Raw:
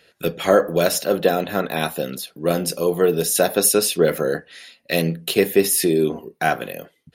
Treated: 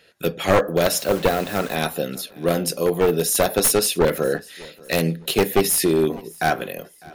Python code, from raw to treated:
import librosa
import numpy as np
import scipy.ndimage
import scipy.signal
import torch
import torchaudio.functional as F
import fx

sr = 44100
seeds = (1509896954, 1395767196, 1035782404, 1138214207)

p1 = np.minimum(x, 2.0 * 10.0 ** (-13.0 / 20.0) - x)
p2 = p1 + fx.echo_feedback(p1, sr, ms=603, feedback_pct=36, wet_db=-23.5, dry=0)
y = fx.quant_dither(p2, sr, seeds[0], bits=6, dither='none', at=(0.98, 1.75))